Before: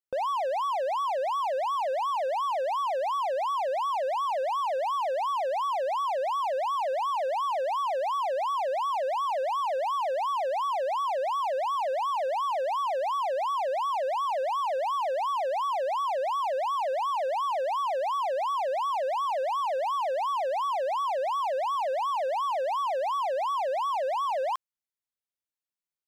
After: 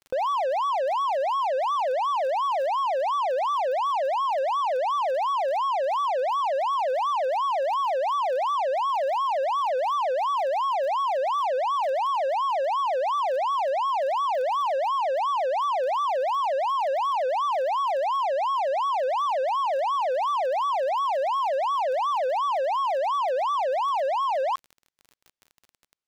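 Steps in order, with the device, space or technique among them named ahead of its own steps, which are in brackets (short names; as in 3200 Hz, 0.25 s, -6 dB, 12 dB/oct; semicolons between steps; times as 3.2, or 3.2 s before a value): lo-fi chain (LPF 6600 Hz 12 dB/oct; wow and flutter; crackle 33/s -40 dBFS); gain +3.5 dB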